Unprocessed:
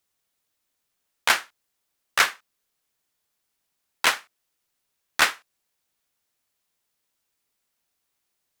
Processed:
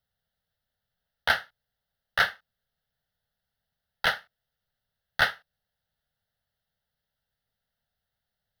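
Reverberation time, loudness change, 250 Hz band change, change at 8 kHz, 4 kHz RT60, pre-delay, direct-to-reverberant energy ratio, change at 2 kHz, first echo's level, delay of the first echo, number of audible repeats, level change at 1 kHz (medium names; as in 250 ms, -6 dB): no reverb, -4.0 dB, -4.5 dB, -18.0 dB, no reverb, no reverb, no reverb, -2.5 dB, no echo, no echo, no echo, -4.5 dB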